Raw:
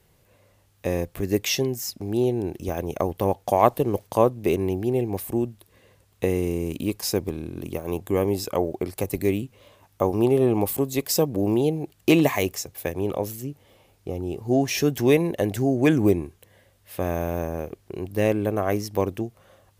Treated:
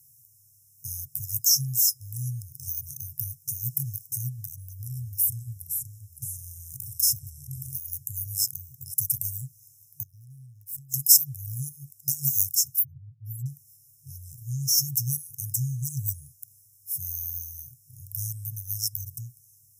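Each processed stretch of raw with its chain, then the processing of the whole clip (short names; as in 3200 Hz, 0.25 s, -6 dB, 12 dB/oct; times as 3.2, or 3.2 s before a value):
4.38–7.69 low shelf 240 Hz +6.5 dB + compressor 10:1, threshold -25 dBFS + echoes that change speed 0.414 s, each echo -2 st, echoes 2, each echo -6 dB
10.03–10.94 high shelf 3900 Hz -12 dB + compressor, threshold -32 dBFS + power-law curve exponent 1.4
12.79–13.46 spectral contrast raised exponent 2.8 + comb 7 ms, depth 100%
whole clip: bell 130 Hz +14 dB 1 oct; FFT band-reject 150–5100 Hz; RIAA curve recording; gain -2 dB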